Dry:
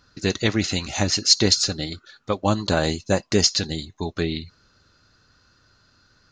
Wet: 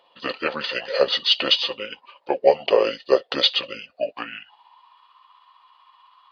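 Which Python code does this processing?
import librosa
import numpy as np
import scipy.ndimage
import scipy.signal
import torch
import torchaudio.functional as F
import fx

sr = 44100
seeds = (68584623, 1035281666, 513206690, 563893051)

y = fx.pitch_heads(x, sr, semitones=-6.5)
y = fx.filter_sweep_highpass(y, sr, from_hz=530.0, to_hz=1100.0, start_s=3.82, end_s=5.0, q=6.3)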